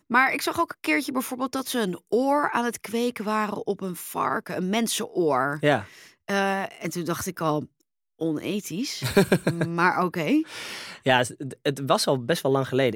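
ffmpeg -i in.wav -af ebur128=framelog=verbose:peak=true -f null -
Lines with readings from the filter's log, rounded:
Integrated loudness:
  I:         -25.3 LUFS
  Threshold: -35.4 LUFS
Loudness range:
  LRA:         2.8 LU
  Threshold: -45.8 LUFS
  LRA low:   -27.1 LUFS
  LRA high:  -24.3 LUFS
True peak:
  Peak:       -5.2 dBFS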